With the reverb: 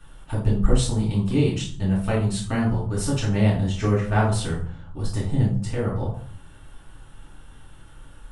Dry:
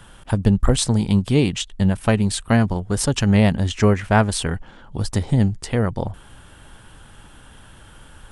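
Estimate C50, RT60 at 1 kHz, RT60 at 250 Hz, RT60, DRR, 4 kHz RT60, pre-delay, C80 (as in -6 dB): 5.5 dB, 0.50 s, 0.70 s, 0.50 s, -7.0 dB, 0.35 s, 3 ms, 10.0 dB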